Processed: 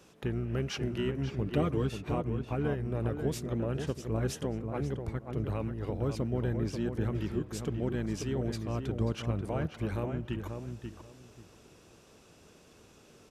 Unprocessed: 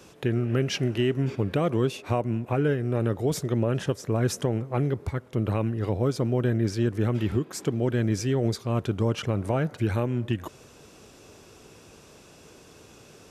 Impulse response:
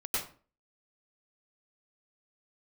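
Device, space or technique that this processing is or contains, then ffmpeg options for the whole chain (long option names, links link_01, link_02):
octave pedal: -filter_complex "[0:a]asettb=1/sr,asplit=3[link_01][link_02][link_03];[link_01]atrim=end=1.464[link_04];[link_02]atrim=start=1.46:end=1.89,asetpts=PTS-STARTPTS,afade=type=in:duration=0.004:curve=qsin,afade=type=out:start_time=0.426:duration=0.004:curve=qsin,aecho=1:1:6.6:0.8,atrim=end_sample=18963[link_05];[link_03]atrim=start=1.886[link_06];[link_04][link_05]acrossfade=duration=0.004:curve1=hsin:curve2=qsin[link_07];[link_07][link_06]acrossfade=duration=0.004:curve1=qsin:curve2=hsin,asplit=2[link_08][link_09];[link_09]adelay=537,lowpass=frequency=2200:poles=1,volume=-6dB,asplit=2[link_10][link_11];[link_11]adelay=537,lowpass=frequency=2200:poles=1,volume=0.21,asplit=2[link_12][link_13];[link_13]adelay=537,lowpass=frequency=2200:poles=1,volume=0.21[link_14];[link_08][link_10][link_12][link_14]amix=inputs=4:normalize=0,asplit=2[link_15][link_16];[link_16]asetrate=22050,aresample=44100,atempo=2,volume=-8dB[link_17];[link_15][link_17]amix=inputs=2:normalize=0,volume=-8.5dB"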